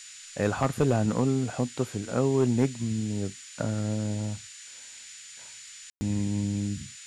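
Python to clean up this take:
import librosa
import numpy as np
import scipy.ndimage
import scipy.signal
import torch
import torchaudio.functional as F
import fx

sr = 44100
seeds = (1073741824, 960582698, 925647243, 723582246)

y = fx.fix_declip(x, sr, threshold_db=-14.5)
y = fx.notch(y, sr, hz=7000.0, q=30.0)
y = fx.fix_ambience(y, sr, seeds[0], print_start_s=4.47, print_end_s=4.97, start_s=5.9, end_s=6.01)
y = fx.noise_reduce(y, sr, print_start_s=4.47, print_end_s=4.97, reduce_db=27.0)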